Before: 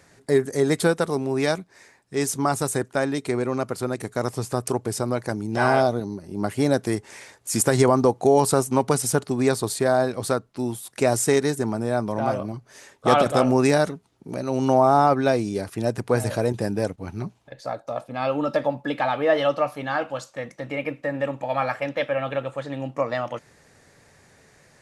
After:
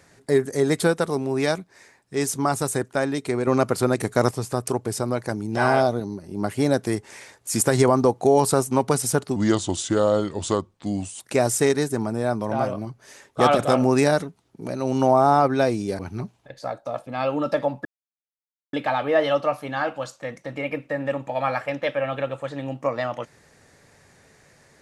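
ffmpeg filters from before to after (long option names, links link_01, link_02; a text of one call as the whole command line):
ffmpeg -i in.wav -filter_complex "[0:a]asplit=7[link_01][link_02][link_03][link_04][link_05][link_06][link_07];[link_01]atrim=end=3.472[link_08];[link_02]atrim=start=3.468:end=4.312,asetpts=PTS-STARTPTS,volume=6dB[link_09];[link_03]atrim=start=4.308:end=9.364[link_10];[link_04]atrim=start=9.36:end=10.87,asetpts=PTS-STARTPTS,asetrate=36162,aresample=44100[link_11];[link_05]atrim=start=10.866:end=15.662[link_12];[link_06]atrim=start=17.008:end=18.87,asetpts=PTS-STARTPTS,afade=type=out:start_time=1.858:duration=0.004:curve=hsin,apad=pad_dur=0.88[link_13];[link_07]atrim=start=18.87,asetpts=PTS-STARTPTS,afade=type=in:duration=0.004:curve=hsin[link_14];[link_08][link_09]acrossfade=duration=0.004:curve1=hsin:curve2=hsin[link_15];[link_15][link_10]acrossfade=duration=0.004:curve1=hsin:curve2=hsin[link_16];[link_16][link_11]acrossfade=duration=0.004:curve1=hsin:curve2=hsin[link_17];[link_17][link_12]acrossfade=duration=0.004:curve1=hsin:curve2=hsin[link_18];[link_13][link_14]concat=n=2:v=0:a=1[link_19];[link_18][link_19]acrossfade=duration=0.004:curve1=hsin:curve2=hsin" out.wav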